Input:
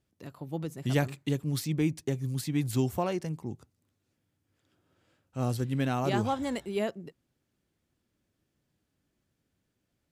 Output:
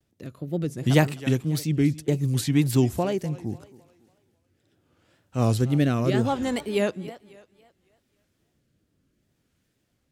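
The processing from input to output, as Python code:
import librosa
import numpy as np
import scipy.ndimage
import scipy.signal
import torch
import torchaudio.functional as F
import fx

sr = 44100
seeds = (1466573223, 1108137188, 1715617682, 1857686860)

y = fx.rotary(x, sr, hz=0.7)
y = fx.echo_thinned(y, sr, ms=273, feedback_pct=41, hz=230.0, wet_db=-17.5)
y = fx.wow_flutter(y, sr, seeds[0], rate_hz=2.1, depth_cents=130.0)
y = F.gain(torch.from_numpy(y), 8.5).numpy()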